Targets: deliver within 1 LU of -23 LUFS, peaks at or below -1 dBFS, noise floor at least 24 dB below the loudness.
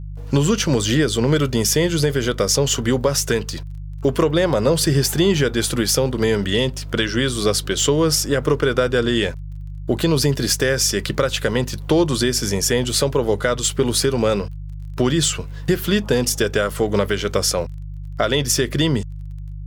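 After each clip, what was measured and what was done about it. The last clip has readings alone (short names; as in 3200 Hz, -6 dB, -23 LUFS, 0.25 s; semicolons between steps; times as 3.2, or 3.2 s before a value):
ticks 19/s; hum 50 Hz; harmonics up to 150 Hz; hum level -28 dBFS; loudness -19.0 LUFS; peak -3.5 dBFS; loudness target -23.0 LUFS
-> de-click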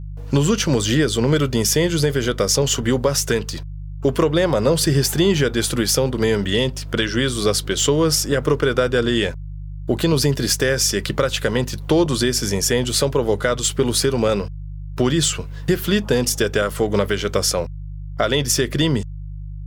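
ticks 0.61/s; hum 50 Hz; harmonics up to 150 Hz; hum level -28 dBFS
-> de-hum 50 Hz, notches 3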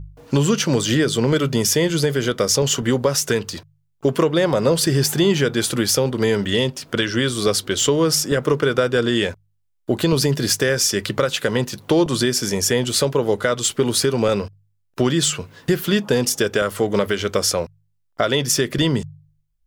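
hum none; loudness -19.5 LUFS; peak -3.5 dBFS; loudness target -23.0 LUFS
-> gain -3.5 dB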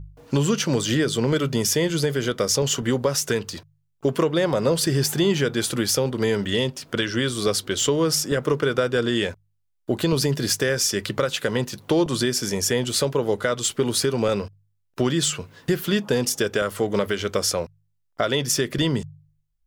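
loudness -23.0 LUFS; peak -7.0 dBFS; noise floor -70 dBFS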